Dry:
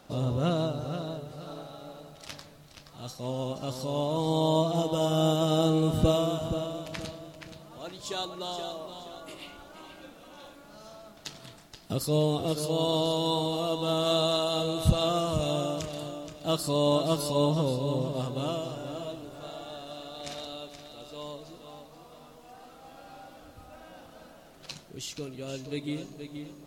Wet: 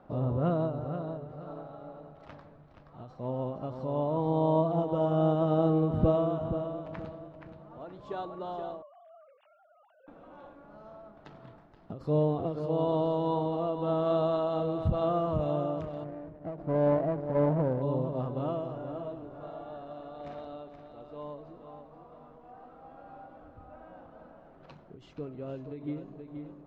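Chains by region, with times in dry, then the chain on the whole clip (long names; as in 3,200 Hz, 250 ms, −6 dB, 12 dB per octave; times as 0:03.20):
0:08.82–0:10.08: three sine waves on the formant tracks + noise gate −41 dBFS, range −11 dB
0:16.04–0:17.82: running median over 41 samples + dynamic equaliser 700 Hz, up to +5 dB, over −41 dBFS, Q 1.7
whole clip: Chebyshev low-pass filter 1,100 Hz, order 2; every ending faded ahead of time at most 100 dB per second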